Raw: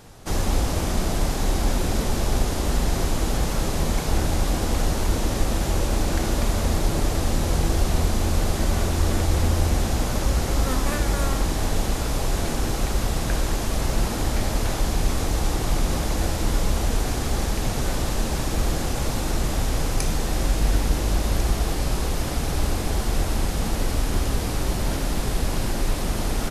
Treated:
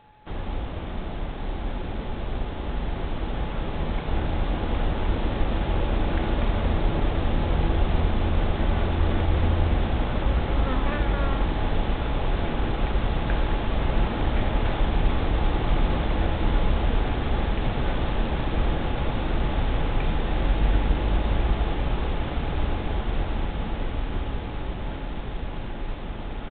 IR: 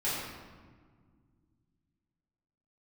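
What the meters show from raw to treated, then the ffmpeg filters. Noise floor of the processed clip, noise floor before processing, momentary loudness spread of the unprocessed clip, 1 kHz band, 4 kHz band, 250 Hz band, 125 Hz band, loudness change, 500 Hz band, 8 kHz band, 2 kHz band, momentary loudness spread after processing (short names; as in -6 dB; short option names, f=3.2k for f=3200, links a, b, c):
-32 dBFS, -26 dBFS, 3 LU, -1.0 dB, -6.0 dB, -2.0 dB, -2.0 dB, -2.5 dB, -2.0 dB, under -40 dB, -2.0 dB, 8 LU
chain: -af "aeval=exprs='val(0)+0.00891*sin(2*PI*850*n/s)':c=same,aresample=8000,aeval=exprs='sgn(val(0))*max(abs(val(0))-0.00376,0)':c=same,aresample=44100,dynaudnorm=f=610:g=13:m=11.5dB,volume=-8dB"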